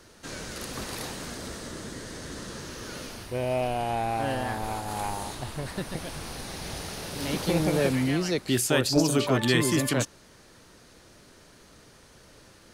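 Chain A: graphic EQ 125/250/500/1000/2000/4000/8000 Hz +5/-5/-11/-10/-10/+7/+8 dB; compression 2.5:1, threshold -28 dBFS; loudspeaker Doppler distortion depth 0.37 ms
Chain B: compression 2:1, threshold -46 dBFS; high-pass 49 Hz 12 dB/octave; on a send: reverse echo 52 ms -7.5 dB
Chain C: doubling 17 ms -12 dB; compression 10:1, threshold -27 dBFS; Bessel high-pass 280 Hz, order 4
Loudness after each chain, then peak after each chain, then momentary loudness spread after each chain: -32.0 LUFS, -40.0 LUFS, -35.0 LUFS; -11.5 dBFS, -24.0 dBFS, -19.0 dBFS; 22 LU, 16 LU, 21 LU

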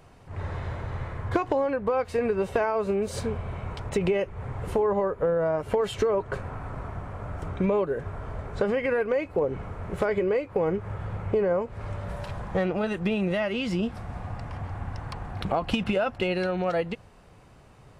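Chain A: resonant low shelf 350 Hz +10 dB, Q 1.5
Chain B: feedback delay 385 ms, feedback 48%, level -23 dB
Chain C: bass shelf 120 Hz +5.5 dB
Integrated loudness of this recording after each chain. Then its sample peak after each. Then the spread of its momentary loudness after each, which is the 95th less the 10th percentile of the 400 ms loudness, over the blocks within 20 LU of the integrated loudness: -22.5 LUFS, -28.5 LUFS, -27.5 LUFS; -2.5 dBFS, -14.0 dBFS, -12.0 dBFS; 10 LU, 11 LU, 9 LU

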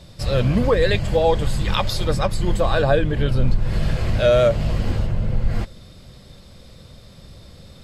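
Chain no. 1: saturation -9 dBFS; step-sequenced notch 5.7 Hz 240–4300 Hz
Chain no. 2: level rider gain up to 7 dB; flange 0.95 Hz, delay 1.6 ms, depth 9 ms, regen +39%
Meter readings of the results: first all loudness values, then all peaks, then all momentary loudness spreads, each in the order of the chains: -23.0 LUFS, -21.0 LUFS; -9.5 dBFS, -5.0 dBFS; 6 LU, 7 LU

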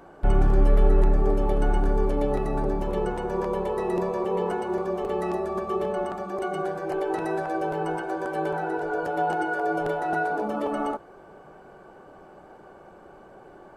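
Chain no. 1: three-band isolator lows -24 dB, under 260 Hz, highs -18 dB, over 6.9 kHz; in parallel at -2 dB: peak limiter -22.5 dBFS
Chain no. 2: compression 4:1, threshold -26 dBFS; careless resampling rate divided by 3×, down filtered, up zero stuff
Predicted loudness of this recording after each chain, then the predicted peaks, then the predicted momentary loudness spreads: -25.0 LUFS, -22.0 LUFS; -12.0 dBFS, -8.5 dBFS; 21 LU, 22 LU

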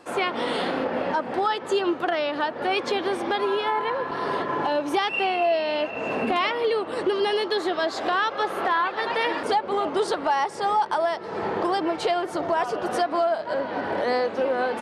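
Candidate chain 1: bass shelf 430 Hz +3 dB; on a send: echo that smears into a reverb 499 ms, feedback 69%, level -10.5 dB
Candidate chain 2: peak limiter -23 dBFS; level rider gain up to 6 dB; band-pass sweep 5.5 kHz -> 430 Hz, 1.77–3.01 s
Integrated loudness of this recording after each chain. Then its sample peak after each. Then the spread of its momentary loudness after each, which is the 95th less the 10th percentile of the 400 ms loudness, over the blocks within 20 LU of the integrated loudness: -23.5 LUFS, -30.0 LUFS; -10.5 dBFS, -17.5 dBFS; 3 LU, 15 LU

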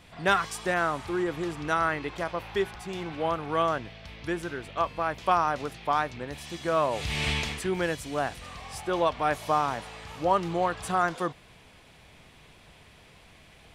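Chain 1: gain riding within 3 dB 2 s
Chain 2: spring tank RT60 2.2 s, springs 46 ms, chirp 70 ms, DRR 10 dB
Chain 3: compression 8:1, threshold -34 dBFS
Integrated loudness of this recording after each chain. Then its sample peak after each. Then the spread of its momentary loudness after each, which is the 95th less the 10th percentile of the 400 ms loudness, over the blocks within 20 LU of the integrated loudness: -28.5 LUFS, -28.5 LUFS, -39.0 LUFS; -11.0 dBFS, -10.5 dBFS, -22.0 dBFS; 10 LU, 11 LU, 16 LU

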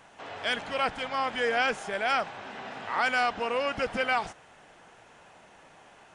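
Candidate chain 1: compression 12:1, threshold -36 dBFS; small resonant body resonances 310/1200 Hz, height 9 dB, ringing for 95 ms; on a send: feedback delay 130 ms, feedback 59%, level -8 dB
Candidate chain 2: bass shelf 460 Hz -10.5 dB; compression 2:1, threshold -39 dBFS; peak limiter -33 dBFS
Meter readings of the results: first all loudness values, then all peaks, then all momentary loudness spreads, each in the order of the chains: -39.0 LUFS, -42.5 LUFS; -24.0 dBFS, -33.0 dBFS; 15 LU, 15 LU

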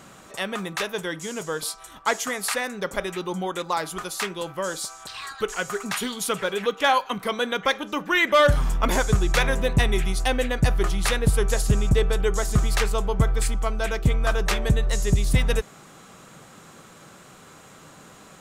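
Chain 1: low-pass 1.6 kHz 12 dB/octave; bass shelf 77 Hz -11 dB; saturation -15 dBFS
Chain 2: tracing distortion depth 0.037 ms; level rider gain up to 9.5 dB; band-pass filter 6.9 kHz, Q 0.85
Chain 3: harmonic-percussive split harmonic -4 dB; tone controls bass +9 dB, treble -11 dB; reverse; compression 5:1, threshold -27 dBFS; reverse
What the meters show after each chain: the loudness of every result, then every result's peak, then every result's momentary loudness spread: -29.0 LUFS, -27.0 LUFS, -32.5 LUFS; -15.5 dBFS, -6.0 dBFS, -15.0 dBFS; 8 LU, 19 LU, 16 LU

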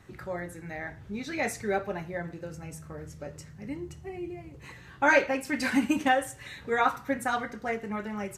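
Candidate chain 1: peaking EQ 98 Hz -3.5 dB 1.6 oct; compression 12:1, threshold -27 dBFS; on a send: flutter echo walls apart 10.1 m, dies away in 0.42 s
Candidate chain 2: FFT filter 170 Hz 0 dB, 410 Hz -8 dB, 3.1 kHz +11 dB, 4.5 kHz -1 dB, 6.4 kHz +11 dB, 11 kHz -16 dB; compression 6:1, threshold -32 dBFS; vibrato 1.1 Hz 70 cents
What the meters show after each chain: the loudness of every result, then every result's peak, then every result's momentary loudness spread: -35.0 LUFS, -37.0 LUFS; -17.0 dBFS, -20.5 dBFS; 11 LU, 8 LU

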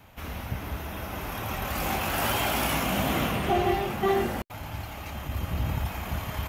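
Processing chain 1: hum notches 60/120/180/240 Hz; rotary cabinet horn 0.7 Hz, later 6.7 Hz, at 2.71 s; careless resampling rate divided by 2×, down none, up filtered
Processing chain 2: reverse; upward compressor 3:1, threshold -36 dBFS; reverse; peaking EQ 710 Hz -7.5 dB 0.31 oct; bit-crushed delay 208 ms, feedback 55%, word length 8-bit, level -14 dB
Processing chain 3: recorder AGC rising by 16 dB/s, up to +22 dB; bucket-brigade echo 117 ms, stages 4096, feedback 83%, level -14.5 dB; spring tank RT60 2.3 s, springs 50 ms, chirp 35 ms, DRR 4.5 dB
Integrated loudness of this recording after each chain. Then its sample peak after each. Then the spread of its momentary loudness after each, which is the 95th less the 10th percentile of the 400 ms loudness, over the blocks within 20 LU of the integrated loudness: -31.0 LUFS, -29.5 LUFS, -26.5 LUFS; -13.0 dBFS, -13.5 dBFS, -12.0 dBFS; 13 LU, 11 LU, 6 LU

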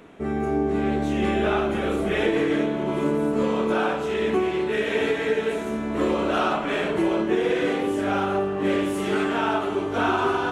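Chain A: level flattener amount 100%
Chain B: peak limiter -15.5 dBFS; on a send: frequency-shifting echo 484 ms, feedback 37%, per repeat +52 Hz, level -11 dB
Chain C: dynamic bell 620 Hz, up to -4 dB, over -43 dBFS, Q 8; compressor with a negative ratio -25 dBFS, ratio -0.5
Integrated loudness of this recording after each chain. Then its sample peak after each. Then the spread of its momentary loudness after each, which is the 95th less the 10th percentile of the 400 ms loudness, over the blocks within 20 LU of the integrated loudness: -19.0 LUFS, -24.5 LUFS, -26.0 LUFS; -6.0 dBFS, -13.0 dBFS, -11.5 dBFS; 1 LU, 2 LU, 3 LU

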